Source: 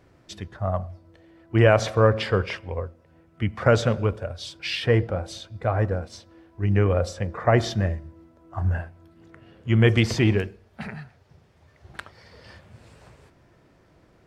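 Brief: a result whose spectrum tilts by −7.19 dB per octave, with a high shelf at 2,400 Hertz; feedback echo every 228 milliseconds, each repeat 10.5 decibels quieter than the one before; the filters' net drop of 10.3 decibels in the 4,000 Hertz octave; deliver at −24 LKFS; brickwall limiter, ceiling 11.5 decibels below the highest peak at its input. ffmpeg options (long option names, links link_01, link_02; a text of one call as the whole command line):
ffmpeg -i in.wav -af "highshelf=frequency=2400:gain=-6,equalizer=frequency=4000:width_type=o:gain=-9,alimiter=limit=-16dB:level=0:latency=1,aecho=1:1:228|456|684:0.299|0.0896|0.0269,volume=5.5dB" out.wav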